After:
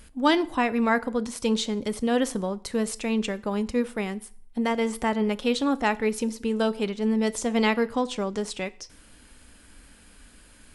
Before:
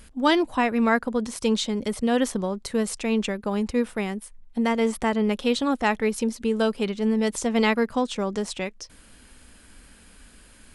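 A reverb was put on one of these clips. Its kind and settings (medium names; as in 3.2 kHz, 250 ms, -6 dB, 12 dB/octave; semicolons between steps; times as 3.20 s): FDN reverb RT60 0.52 s, low-frequency decay 1×, high-frequency decay 0.9×, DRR 14.5 dB; trim -1.5 dB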